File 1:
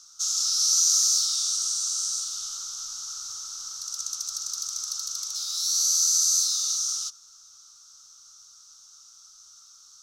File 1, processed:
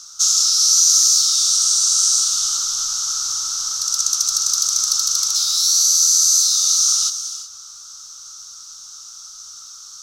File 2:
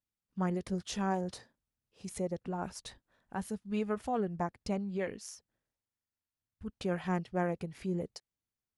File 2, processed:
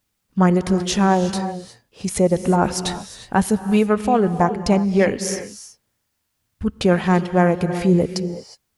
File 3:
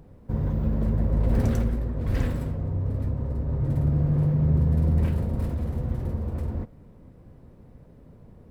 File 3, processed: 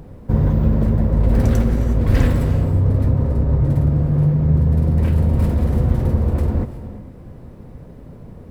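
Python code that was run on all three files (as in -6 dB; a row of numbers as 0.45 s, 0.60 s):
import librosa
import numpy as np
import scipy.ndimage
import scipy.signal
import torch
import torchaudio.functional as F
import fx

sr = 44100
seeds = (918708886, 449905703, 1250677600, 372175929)

y = fx.rev_gated(x, sr, seeds[0], gate_ms=390, shape='rising', drr_db=11.5)
y = fx.rider(y, sr, range_db=3, speed_s=0.5)
y = librosa.util.normalize(y) * 10.0 ** (-2 / 20.0)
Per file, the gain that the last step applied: +10.5 dB, +18.0 dB, +8.0 dB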